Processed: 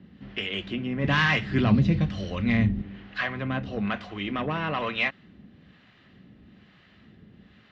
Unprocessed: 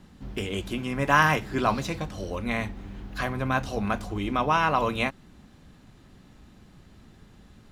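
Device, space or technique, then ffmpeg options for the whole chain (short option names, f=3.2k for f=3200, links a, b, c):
guitar amplifier with harmonic tremolo: -filter_complex "[0:a]acrossover=split=590[a][b];[a]aeval=exprs='val(0)*(1-0.7/2+0.7/2*cos(2*PI*1.1*n/s))':c=same[c];[b]aeval=exprs='val(0)*(1-0.7/2-0.7/2*cos(2*PI*1.1*n/s))':c=same[d];[c][d]amix=inputs=2:normalize=0,asoftclip=type=tanh:threshold=-22dB,highpass=85,equalizer=f=200:t=q:w=4:g=4,equalizer=f=890:t=q:w=4:g=-6,equalizer=f=1.9k:t=q:w=4:g=8,equalizer=f=2.9k:t=q:w=4:g=6,lowpass=f=4.3k:w=0.5412,lowpass=f=4.3k:w=1.3066,asettb=1/sr,asplit=3[e][f][g];[e]atrim=end=1.044[h];[f]atrim=start=1.04:end=2.82,asetpts=PTS-STARTPTS,afade=t=in:d=0.004:c=qsin,afade=t=out:st=1.776:d=0.004:c=qsin,bass=f=250:g=14,treble=f=4k:g=7[i];[g]atrim=start=2.816[j];[h][i]acrossfade=d=0.004:c1=hsin:c2=qsin[k];[k][j]acrossfade=d=0.004:c1=qsin:c2=hsin,volume=2dB"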